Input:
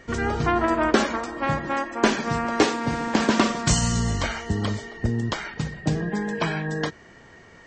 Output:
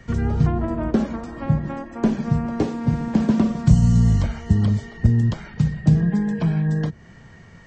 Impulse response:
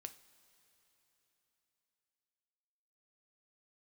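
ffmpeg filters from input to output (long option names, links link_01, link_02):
-filter_complex "[0:a]lowshelf=frequency=240:width_type=q:width=1.5:gain=9,acrossover=split=180|700[link_01][link_02][link_03];[link_03]acompressor=threshold=-38dB:ratio=6[link_04];[link_01][link_02][link_04]amix=inputs=3:normalize=0,volume=-1dB"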